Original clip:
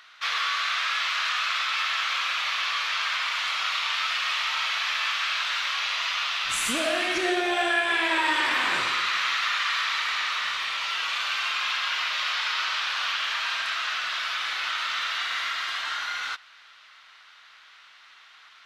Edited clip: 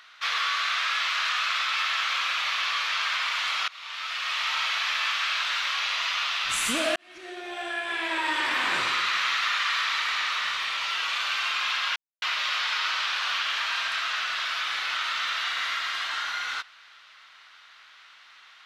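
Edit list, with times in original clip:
3.68–4.5 fade in, from -23.5 dB
6.96–8.9 fade in
11.96 insert silence 0.26 s

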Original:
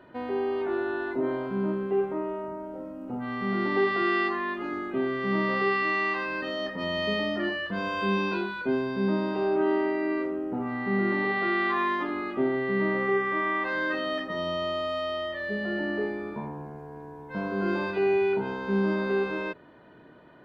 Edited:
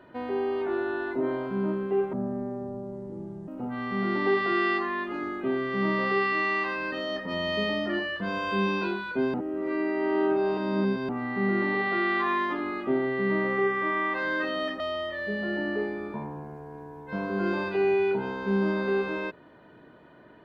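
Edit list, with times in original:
2.13–2.98 speed 63%
8.84–10.59 reverse
14.3–15.02 cut

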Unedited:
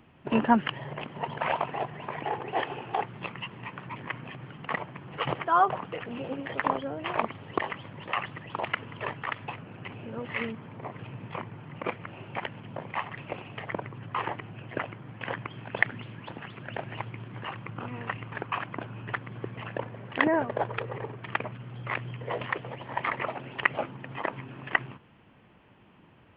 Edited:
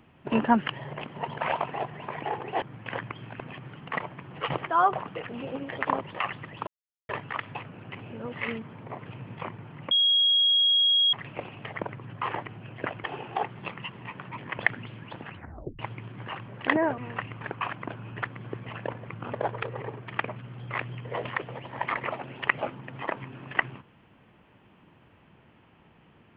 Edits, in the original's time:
2.62–4.17 swap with 14.97–15.75
6.78–7.94 cut
8.6–9.02 mute
11.84–13.06 bleep 3290 Hz -18.5 dBFS
16.45 tape stop 0.50 s
17.64–17.89 swap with 19.99–20.49

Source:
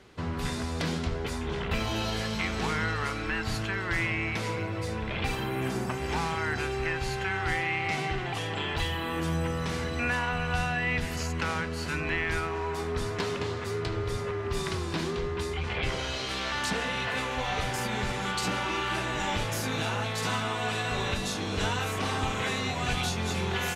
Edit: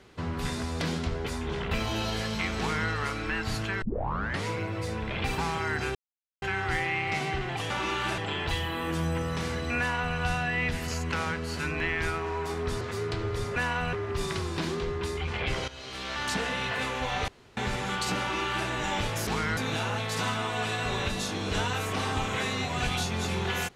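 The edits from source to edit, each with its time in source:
2.59–2.89 copy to 19.63
3.82 tape start 0.65 s
5.38–6.15 cut
6.72–7.19 mute
10.08–10.45 copy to 14.29
13.1–13.54 cut
16.04–16.68 fade in, from -14.5 dB
17.64–17.93 room tone
18.56–19.04 copy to 8.47

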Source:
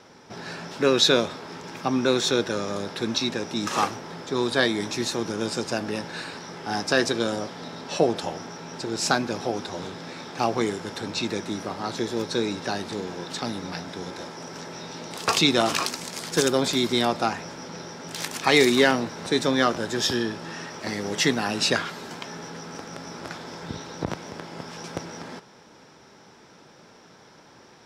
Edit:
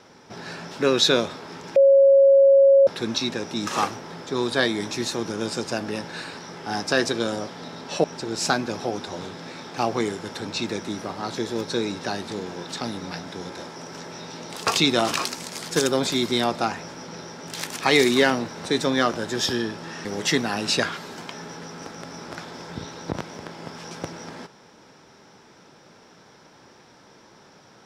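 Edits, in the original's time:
1.76–2.87 bleep 549 Hz -10.5 dBFS
8.04–8.65 cut
20.66–20.98 cut

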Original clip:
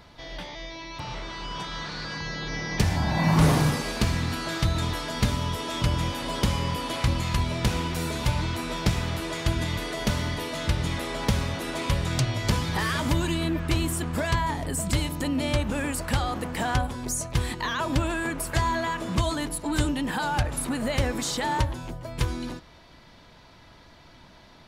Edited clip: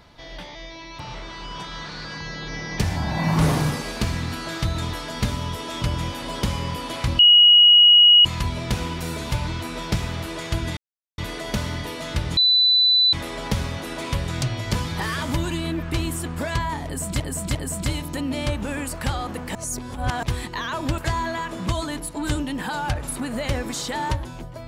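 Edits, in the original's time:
7.19 add tone 2900 Hz -8.5 dBFS 1.06 s
9.71 insert silence 0.41 s
10.9 add tone 3990 Hz -13.5 dBFS 0.76 s
14.62–14.97 loop, 3 plays
16.62–17.3 reverse
18.05–18.47 cut

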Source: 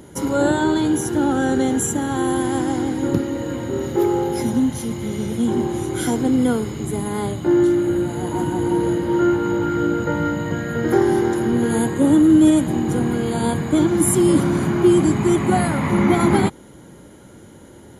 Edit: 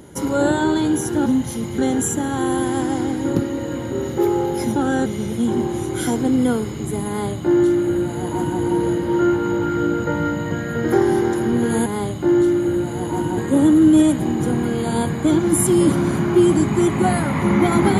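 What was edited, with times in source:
1.26–1.56 swap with 4.54–5.06
7.08–8.6 copy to 11.86

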